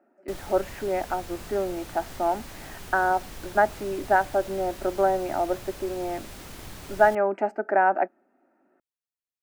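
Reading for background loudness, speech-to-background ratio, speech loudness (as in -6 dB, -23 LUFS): -42.0 LUFS, 16.0 dB, -26.0 LUFS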